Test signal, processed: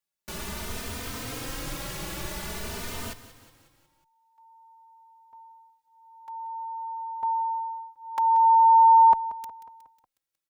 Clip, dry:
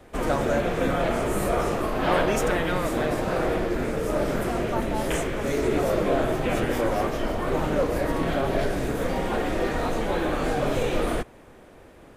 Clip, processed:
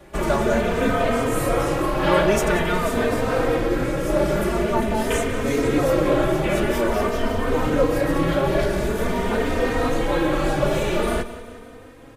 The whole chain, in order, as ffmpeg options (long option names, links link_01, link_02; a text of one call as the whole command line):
ffmpeg -i in.wav -filter_complex "[0:a]bandreject=frequency=740:width=13,aecho=1:1:182|364|546|728|910:0.188|0.104|0.057|0.0313|0.0172,asplit=2[link_01][link_02];[link_02]adelay=3.1,afreqshift=0.47[link_03];[link_01][link_03]amix=inputs=2:normalize=1,volume=7dB" out.wav